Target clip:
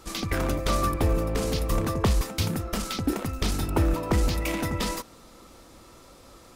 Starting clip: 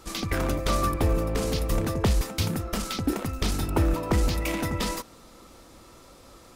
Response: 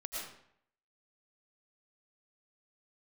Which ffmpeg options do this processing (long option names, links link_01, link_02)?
-filter_complex "[0:a]asettb=1/sr,asplit=3[link_01][link_02][link_03];[link_01]atrim=end=1.674[link_04];[link_02]atrim=start=1.67:end=2.23,asetpts=PTS-STARTPTS,afade=type=in:duration=0.004:curve=qsin,afade=type=out:start_time=0.556:duration=0.004:curve=qsin,equalizer=frequency=1100:width_type=o:width=0.21:gain=7.5[link_05];[link_03]atrim=start=2.226[link_06];[link_04][link_05]acrossfade=duration=0.004:curve1=hsin:curve2=qsin[link_07];[link_07][link_06]acrossfade=duration=0.004:curve1=qsin:curve2=hsin"